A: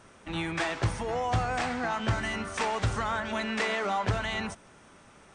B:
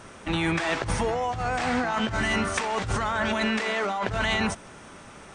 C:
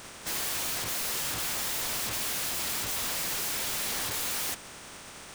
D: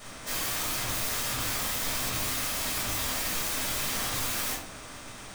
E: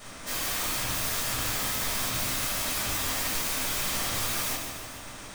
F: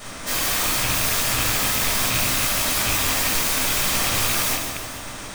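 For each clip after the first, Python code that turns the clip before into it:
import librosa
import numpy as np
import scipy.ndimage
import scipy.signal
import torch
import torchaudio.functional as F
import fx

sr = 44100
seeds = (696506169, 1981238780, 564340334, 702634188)

y1 = fx.over_compress(x, sr, threshold_db=-33.0, ratio=-1.0)
y1 = F.gain(torch.from_numpy(y1), 6.5).numpy()
y2 = fx.spec_flatten(y1, sr, power=0.37)
y2 = (np.mod(10.0 ** (27.0 / 20.0) * y2 + 1.0, 2.0) - 1.0) / 10.0 ** (27.0 / 20.0)
y3 = fx.room_shoebox(y2, sr, seeds[0], volume_m3=400.0, walls='furnished', distance_m=6.3)
y3 = F.gain(torch.from_numpy(y3), -7.5).numpy()
y4 = fx.echo_feedback(y3, sr, ms=148, feedback_pct=54, wet_db=-7.0)
y5 = fx.rattle_buzz(y4, sr, strikes_db=-38.0, level_db=-24.0)
y5 = F.gain(torch.from_numpy(y5), 8.0).numpy()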